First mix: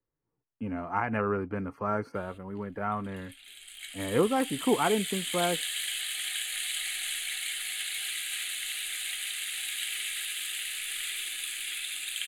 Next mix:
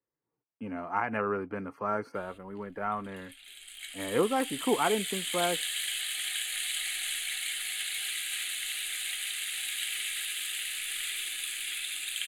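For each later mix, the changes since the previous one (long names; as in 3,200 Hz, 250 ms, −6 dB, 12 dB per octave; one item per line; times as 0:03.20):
speech: add high-pass filter 270 Hz 6 dB per octave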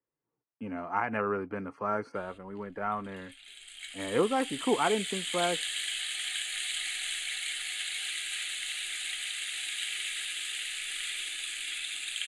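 master: add low-pass filter 9,100 Hz 24 dB per octave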